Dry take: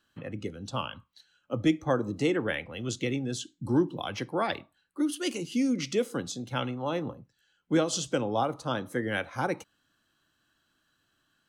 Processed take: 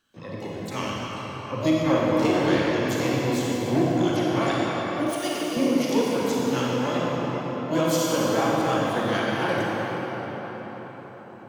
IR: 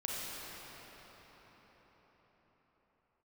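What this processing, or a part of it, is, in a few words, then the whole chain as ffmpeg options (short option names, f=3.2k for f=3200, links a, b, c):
shimmer-style reverb: -filter_complex "[0:a]asplit=2[a][b];[b]asetrate=88200,aresample=44100,atempo=0.5,volume=-7dB[c];[a][c]amix=inputs=2:normalize=0[d];[1:a]atrim=start_sample=2205[e];[d][e]afir=irnorm=-1:irlink=0,asettb=1/sr,asplit=3[f][g][h];[f]atrim=end=5.114[i];[g]atrim=start=5.11:end=5.57,asetpts=PTS-STARTPTS,afade=t=in:d=0.004:c=qsin,afade=t=out:st=0.456:d=0.004:c=qsin,lowshelf=f=250:g=-11[j];[h]atrim=start=5.566[k];[i][j]acrossfade=d=0.004:c1=hsin:c2=qsin[l];[l][k]acrossfade=d=0.004:c1=qsin:c2=hsin,volume=1.5dB"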